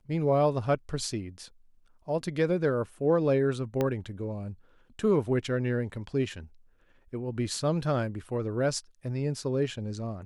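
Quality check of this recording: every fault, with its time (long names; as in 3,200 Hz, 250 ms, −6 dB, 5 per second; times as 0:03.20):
0:03.81: click −15 dBFS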